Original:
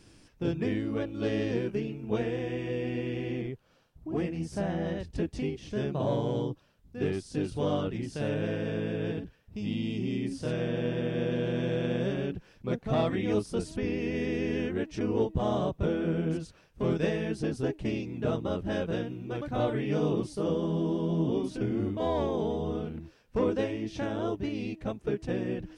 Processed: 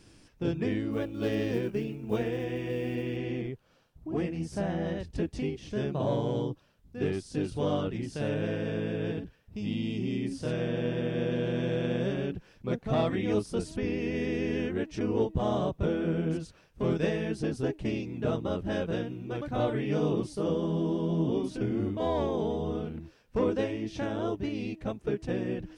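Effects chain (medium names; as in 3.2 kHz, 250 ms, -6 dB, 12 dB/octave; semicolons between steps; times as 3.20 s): 0.91–3.17 s: block-companded coder 7-bit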